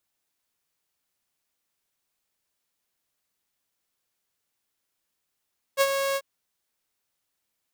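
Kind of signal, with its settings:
note with an ADSR envelope saw 549 Hz, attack 41 ms, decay 50 ms, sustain −7.5 dB, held 0.39 s, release 51 ms −14 dBFS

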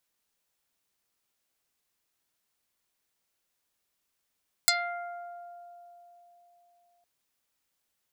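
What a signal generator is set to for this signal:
Karplus-Strong string F5, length 2.36 s, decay 3.92 s, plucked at 0.24, dark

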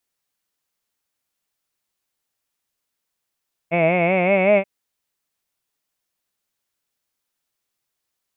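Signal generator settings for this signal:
vowel from formants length 0.93 s, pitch 163 Hz, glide +4 semitones, F1 630 Hz, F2 2,200 Hz, F3 2,600 Hz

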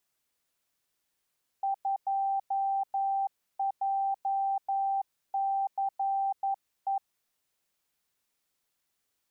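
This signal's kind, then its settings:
Morse code "2JCE" 11 words per minute 784 Hz −26 dBFS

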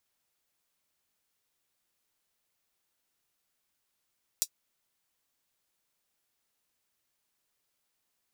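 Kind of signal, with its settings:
closed synth hi-hat, high-pass 5,300 Hz, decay 0.07 s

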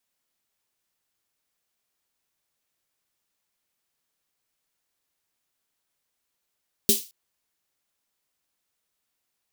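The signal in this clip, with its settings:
synth snare length 0.22 s, tones 220 Hz, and 400 Hz, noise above 3,200 Hz, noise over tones 4.5 dB, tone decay 0.17 s, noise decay 0.32 s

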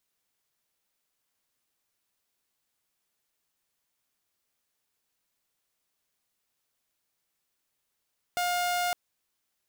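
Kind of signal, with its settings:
tone saw 710 Hz −23.5 dBFS 0.56 s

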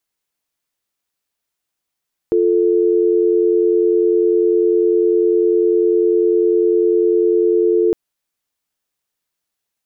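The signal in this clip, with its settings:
call progress tone dial tone, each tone −14 dBFS 5.61 s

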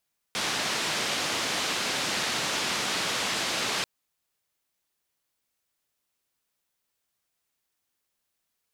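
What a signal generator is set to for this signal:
band-limited noise 130–4,900 Hz, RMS −29 dBFS 3.49 s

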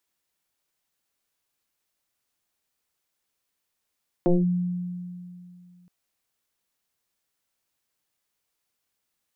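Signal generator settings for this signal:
two-operator FM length 1.62 s, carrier 178 Hz, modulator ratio 0.98, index 2.4, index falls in 0.19 s linear, decay 2.56 s, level −15 dB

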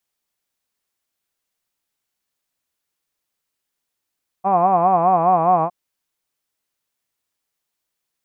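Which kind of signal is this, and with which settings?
vowel by formant synthesis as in hod, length 1.26 s, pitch 185 Hz, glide −1.5 semitones, vibrato 4.9 Hz, vibrato depth 1.3 semitones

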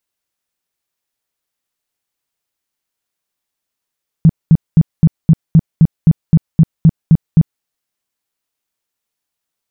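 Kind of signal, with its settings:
tone bursts 161 Hz, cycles 7, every 0.26 s, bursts 13, −2.5 dBFS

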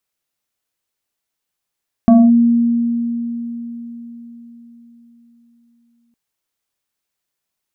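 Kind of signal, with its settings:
two-operator FM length 4.06 s, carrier 235 Hz, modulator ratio 1.9, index 0.77, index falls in 0.23 s linear, decay 4.49 s, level −4 dB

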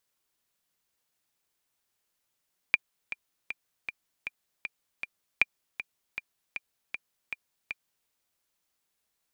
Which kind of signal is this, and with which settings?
click track 157 BPM, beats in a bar 7, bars 2, 2,390 Hz, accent 13.5 dB −7 dBFS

